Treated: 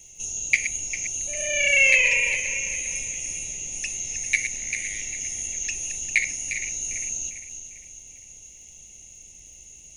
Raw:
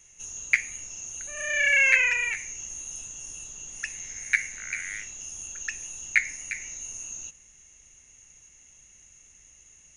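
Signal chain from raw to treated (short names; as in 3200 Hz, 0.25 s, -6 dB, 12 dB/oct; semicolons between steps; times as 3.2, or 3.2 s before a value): regenerating reverse delay 0.2 s, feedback 65%, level -9.5 dB; crackle 200/s -58 dBFS; Butterworth band-stop 1400 Hz, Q 0.81; gain +7.5 dB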